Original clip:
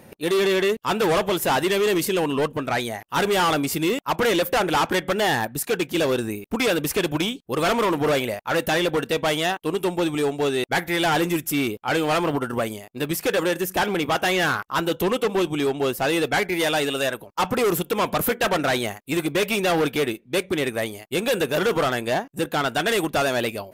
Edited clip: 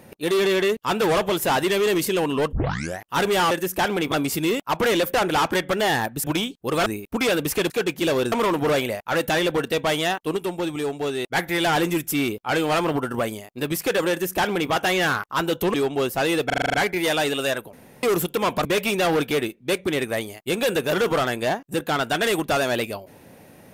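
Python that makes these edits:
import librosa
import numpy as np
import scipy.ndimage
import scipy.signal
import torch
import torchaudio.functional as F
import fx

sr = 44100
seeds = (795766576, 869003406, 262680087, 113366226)

y = fx.edit(x, sr, fx.tape_start(start_s=2.53, length_s=0.47),
    fx.swap(start_s=5.63, length_s=0.62, other_s=7.09, other_length_s=0.62),
    fx.clip_gain(start_s=9.76, length_s=0.98, db=-3.5),
    fx.duplicate(start_s=13.49, length_s=0.61, to_s=3.51),
    fx.cut(start_s=15.13, length_s=0.45),
    fx.stutter(start_s=16.3, slice_s=0.04, count=8),
    fx.room_tone_fill(start_s=17.29, length_s=0.3),
    fx.cut(start_s=18.21, length_s=1.09), tone=tone)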